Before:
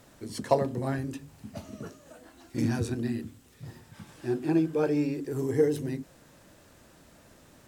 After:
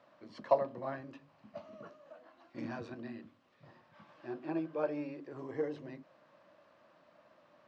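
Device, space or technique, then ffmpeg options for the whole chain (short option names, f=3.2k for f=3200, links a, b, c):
kitchen radio: -af "highpass=230,equalizer=f=260:t=q:w=4:g=-4,equalizer=f=420:t=q:w=4:g=-8,equalizer=f=600:t=q:w=4:g=10,equalizer=f=1.1k:t=q:w=4:g=9,equalizer=f=3.6k:t=q:w=4:g=-4,lowpass=f=4.1k:w=0.5412,lowpass=f=4.1k:w=1.3066,volume=-8.5dB"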